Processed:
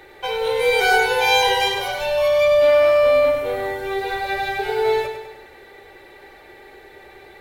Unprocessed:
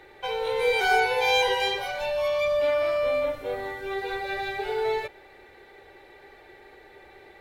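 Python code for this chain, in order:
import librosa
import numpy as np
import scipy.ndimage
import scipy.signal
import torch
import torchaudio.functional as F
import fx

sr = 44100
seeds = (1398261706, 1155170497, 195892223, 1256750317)

y = fx.high_shelf(x, sr, hz=7700.0, db=7.0)
y = fx.echo_feedback(y, sr, ms=100, feedback_pct=52, wet_db=-8.0)
y = y * librosa.db_to_amplitude(5.0)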